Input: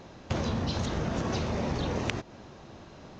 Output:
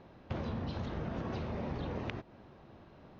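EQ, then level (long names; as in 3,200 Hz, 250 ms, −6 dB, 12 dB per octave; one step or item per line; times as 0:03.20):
high-frequency loss of the air 250 metres
−7.0 dB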